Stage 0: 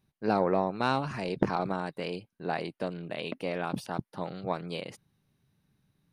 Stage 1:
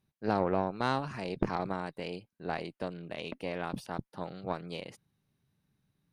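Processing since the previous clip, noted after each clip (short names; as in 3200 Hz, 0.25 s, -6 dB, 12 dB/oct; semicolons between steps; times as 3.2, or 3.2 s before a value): tube stage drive 15 dB, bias 0.75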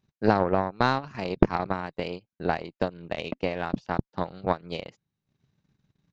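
downsampling 16000 Hz; transient shaper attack +8 dB, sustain -11 dB; gain +4 dB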